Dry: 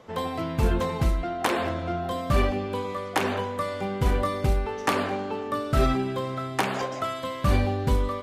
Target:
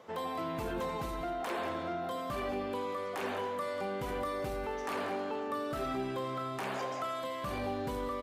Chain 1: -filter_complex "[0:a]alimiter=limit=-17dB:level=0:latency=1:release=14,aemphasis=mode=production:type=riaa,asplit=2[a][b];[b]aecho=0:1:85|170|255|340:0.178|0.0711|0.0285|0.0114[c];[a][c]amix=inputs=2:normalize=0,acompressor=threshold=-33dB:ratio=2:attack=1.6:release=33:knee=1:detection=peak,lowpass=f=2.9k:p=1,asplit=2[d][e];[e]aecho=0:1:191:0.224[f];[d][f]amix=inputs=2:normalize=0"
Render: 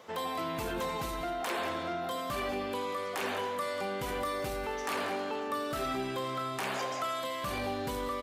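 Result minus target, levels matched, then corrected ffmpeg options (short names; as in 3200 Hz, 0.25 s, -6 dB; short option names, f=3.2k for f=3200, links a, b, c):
4000 Hz band +4.5 dB
-filter_complex "[0:a]alimiter=limit=-17dB:level=0:latency=1:release=14,aemphasis=mode=production:type=riaa,asplit=2[a][b];[b]aecho=0:1:85|170|255|340:0.178|0.0711|0.0285|0.0114[c];[a][c]amix=inputs=2:normalize=0,acompressor=threshold=-33dB:ratio=2:attack=1.6:release=33:knee=1:detection=peak,lowpass=f=1.1k:p=1,asplit=2[d][e];[e]aecho=0:1:191:0.224[f];[d][f]amix=inputs=2:normalize=0"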